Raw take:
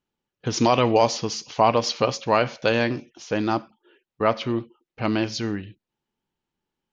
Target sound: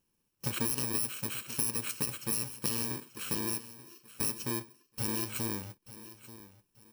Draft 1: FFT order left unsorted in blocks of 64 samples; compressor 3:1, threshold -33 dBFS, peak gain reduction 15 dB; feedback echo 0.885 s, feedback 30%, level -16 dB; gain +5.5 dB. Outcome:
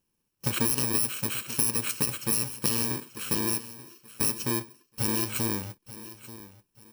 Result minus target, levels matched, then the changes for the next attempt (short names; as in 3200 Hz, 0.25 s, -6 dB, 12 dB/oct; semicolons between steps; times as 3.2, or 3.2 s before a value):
compressor: peak gain reduction -6 dB
change: compressor 3:1, threshold -42 dBFS, peak gain reduction 21 dB